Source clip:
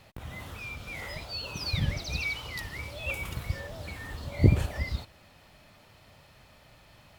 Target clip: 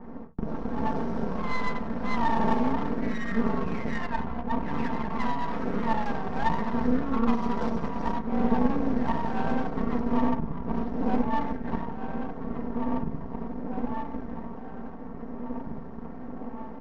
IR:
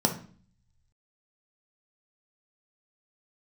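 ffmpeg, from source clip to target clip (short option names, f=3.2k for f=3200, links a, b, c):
-filter_complex "[0:a]acompressor=threshold=-31dB:ratio=12,asplit=2[a][b];[b]adelay=1127,lowpass=f=3.4k:p=1,volume=-7dB,asplit=2[c][d];[d]adelay=1127,lowpass=f=3.4k:p=1,volume=0.42,asplit=2[e][f];[f]adelay=1127,lowpass=f=3.4k:p=1,volume=0.42,asplit=2[g][h];[h]adelay=1127,lowpass=f=3.4k:p=1,volume=0.42,asplit=2[i][j];[j]adelay=1127,lowpass=f=3.4k:p=1,volume=0.42[k];[a][c][e][g][i][k]amix=inputs=6:normalize=0,alimiter=level_in=7dB:limit=-24dB:level=0:latency=1:release=44,volume=-7dB,bandreject=f=60:t=h:w=6,bandreject=f=120:t=h:w=6,bandreject=f=180:t=h:w=6,bandreject=f=240:t=h:w=6,bandreject=f=300:t=h:w=6,bandreject=f=360:t=h:w=6,bandreject=f=420:t=h:w=6,asetrate=18846,aresample=44100[l];[1:a]atrim=start_sample=2205,atrim=end_sample=3528[m];[l][m]afir=irnorm=-1:irlink=0,aeval=exprs='max(val(0),0)':c=same,highshelf=f=2.2k:g=-9.5,adynamicsmooth=sensitivity=3:basefreq=1.9k,aecho=1:1:4.4:0.53,adynamicequalizer=threshold=0.00224:dfrequency=3200:dqfactor=0.7:tfrequency=3200:tqfactor=0.7:attack=5:release=100:ratio=0.375:range=2.5:mode=boostabove:tftype=highshelf,volume=4dB"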